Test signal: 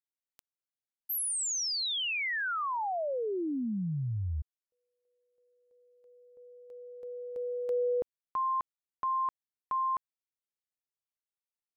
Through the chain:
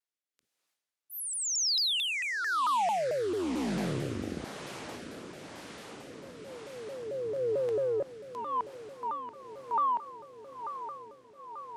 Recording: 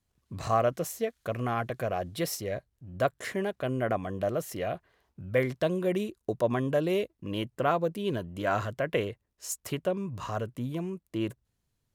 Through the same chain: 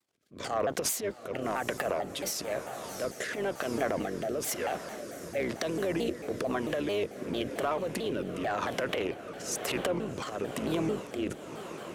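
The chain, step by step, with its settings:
sub-octave generator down 2 octaves, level +4 dB
transient designer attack −11 dB, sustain +11 dB
Bessel high-pass filter 410 Hz, order 2
in parallel at −1.5 dB: speech leveller within 5 dB
on the sum: high-shelf EQ 12,000 Hz −10.5 dB
on a send: feedback delay with all-pass diffusion 765 ms, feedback 73%, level −15.5 dB
on the sum: downward compressor 4 to 1, threshold −28 dBFS
soft clipping −20 dBFS
rotating-speaker cabinet horn 1 Hz
pitch modulation by a square or saw wave saw down 4.5 Hz, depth 250 cents
level +3.5 dB

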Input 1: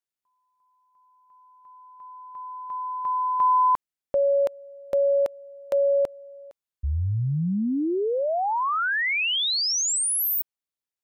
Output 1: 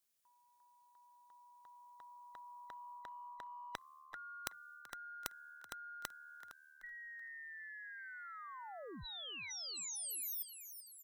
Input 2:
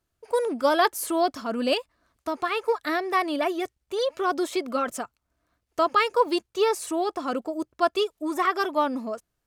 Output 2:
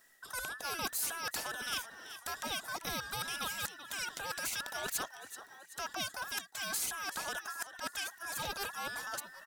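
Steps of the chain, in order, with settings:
frequency inversion band by band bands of 2,000 Hz
high-shelf EQ 4,300 Hz +9 dB
reversed playback
downward compressor 5 to 1, threshold −30 dBFS
reversed playback
echo with shifted repeats 381 ms, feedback 43%, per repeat +75 Hz, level −22.5 dB
every bin compressed towards the loudest bin 2 to 1
level −1 dB

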